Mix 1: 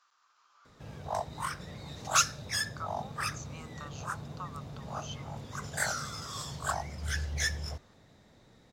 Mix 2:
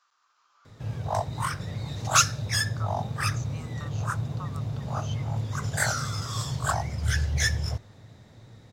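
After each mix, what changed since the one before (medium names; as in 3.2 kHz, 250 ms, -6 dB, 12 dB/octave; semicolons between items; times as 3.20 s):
background +5.0 dB; master: add peaking EQ 110 Hz +13.5 dB 0.57 oct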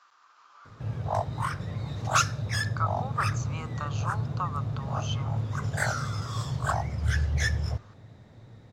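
speech +11.5 dB; master: add treble shelf 3.7 kHz -10.5 dB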